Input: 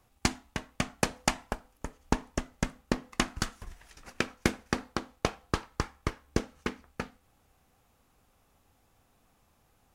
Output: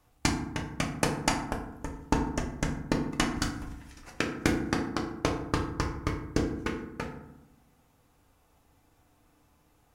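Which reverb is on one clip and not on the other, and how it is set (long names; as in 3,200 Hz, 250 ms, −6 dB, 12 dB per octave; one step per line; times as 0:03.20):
feedback delay network reverb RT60 0.85 s, low-frequency decay 1.5×, high-frequency decay 0.45×, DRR 1 dB
level −1 dB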